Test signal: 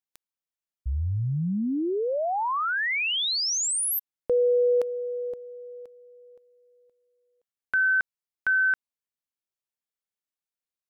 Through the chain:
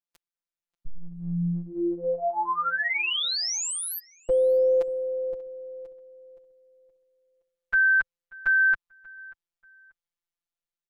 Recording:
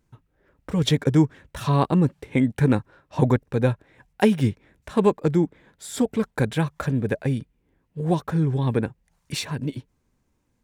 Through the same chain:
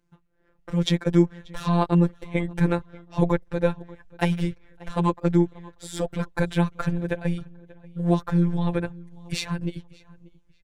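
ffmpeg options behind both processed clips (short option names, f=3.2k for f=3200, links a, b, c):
-filter_complex "[0:a]afftfilt=real='hypot(re,im)*cos(PI*b)':imag='0':win_size=1024:overlap=0.75,highshelf=f=8.4k:g=-10,dynaudnorm=f=340:g=5:m=4dB,asubboost=boost=7.5:cutoff=76,asplit=2[a][b];[b]adelay=586,lowpass=f=3.3k:p=1,volume=-22dB,asplit=2[c][d];[d]adelay=586,lowpass=f=3.3k:p=1,volume=0.28[e];[c][e]amix=inputs=2:normalize=0[f];[a][f]amix=inputs=2:normalize=0"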